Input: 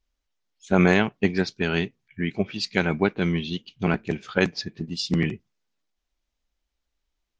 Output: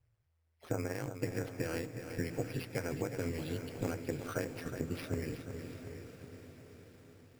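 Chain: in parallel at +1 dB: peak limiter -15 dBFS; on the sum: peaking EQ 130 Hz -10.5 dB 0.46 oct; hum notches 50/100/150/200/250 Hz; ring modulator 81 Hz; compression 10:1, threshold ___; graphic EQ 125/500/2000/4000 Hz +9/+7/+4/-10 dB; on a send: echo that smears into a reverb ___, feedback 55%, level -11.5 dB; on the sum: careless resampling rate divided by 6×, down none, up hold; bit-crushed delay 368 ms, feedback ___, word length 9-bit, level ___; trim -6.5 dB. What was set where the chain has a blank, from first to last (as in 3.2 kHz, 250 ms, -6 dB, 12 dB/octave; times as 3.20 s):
-31 dBFS, 703 ms, 55%, -9 dB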